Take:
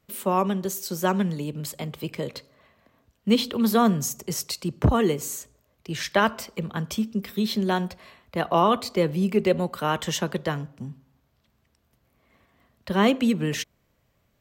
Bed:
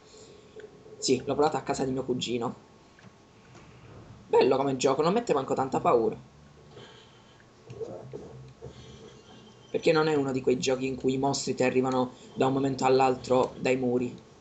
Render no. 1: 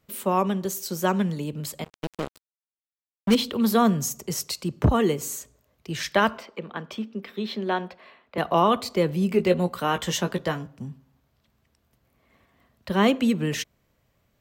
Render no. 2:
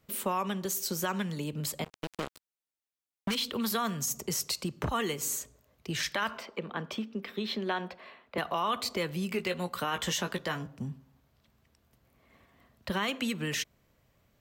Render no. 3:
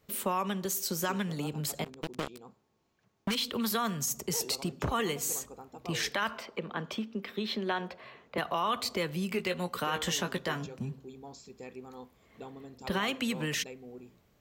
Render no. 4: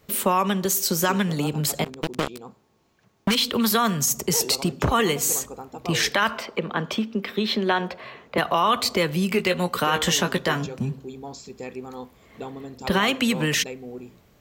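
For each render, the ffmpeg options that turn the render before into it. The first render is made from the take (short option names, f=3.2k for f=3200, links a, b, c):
-filter_complex "[0:a]asettb=1/sr,asplit=3[a][b][c];[a]atrim=end=1.844[d];[b]atrim=start=1.84:end=3.35,asetpts=PTS-STARTPTS,afade=t=in:d=0.004:c=qsin,afade=t=out:st=1.506:d=0.004:c=qsin,acrusher=bits=3:mix=0:aa=0.5[e];[c]atrim=start=3.346[f];[d][e]acrossfade=d=0.004:c1=hsin:c2=qsin[g];[g][f]acrossfade=d=0.004:c1=qsin:c2=hsin,asettb=1/sr,asplit=3[h][i][j];[h]atrim=end=6.384[k];[i]atrim=start=6.38:end=8.38,asetpts=PTS-STARTPTS,afade=t=in:d=0.004:c=qsin,afade=t=out:st=1.996:d=0.004:c=qsin,acrossover=split=230 3900:gain=0.112 1 0.112[l][m][n];[l][m][n]amix=inputs=3:normalize=0[o];[j]atrim=start=8.376[p];[k][o]acrossfade=d=0.004:c1=hsin:c2=qsin[q];[q][p]acrossfade=d=0.004:c1=qsin:c2=hsin,asettb=1/sr,asplit=3[r][s][t];[r]atrim=end=9.294[u];[s]atrim=start=9.29:end=10.67,asetpts=PTS-STARTPTS,afade=t=in:d=0.004:c=qsin,afade=t=out:st=1.376:d=0.004:c=qsin,asplit=2[v][w];[w]adelay=17,volume=-7.5dB[x];[v][x]amix=inputs=2:normalize=0,atrim=end_sample=60858[y];[t]atrim=start=10.666[z];[u][y]acrossfade=d=0.004:c1=hsin:c2=qsin[aa];[aa][z]acrossfade=d=0.004:c1=qsin:c2=hsin"
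-filter_complex "[0:a]acrossover=split=1000[a][b];[a]acompressor=threshold=-31dB:ratio=6[c];[c][b]amix=inputs=2:normalize=0,alimiter=limit=-21dB:level=0:latency=1:release=45"
-filter_complex "[1:a]volume=-20.5dB[a];[0:a][a]amix=inputs=2:normalize=0"
-af "volume=10dB"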